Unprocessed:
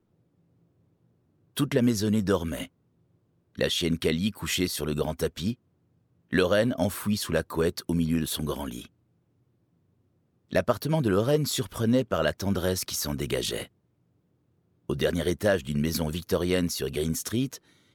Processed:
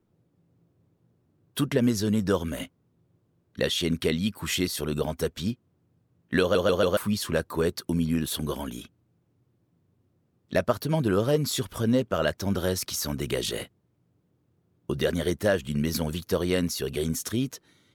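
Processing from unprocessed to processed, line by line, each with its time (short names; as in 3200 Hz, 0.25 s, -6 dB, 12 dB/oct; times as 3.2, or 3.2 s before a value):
6.41 stutter in place 0.14 s, 4 plays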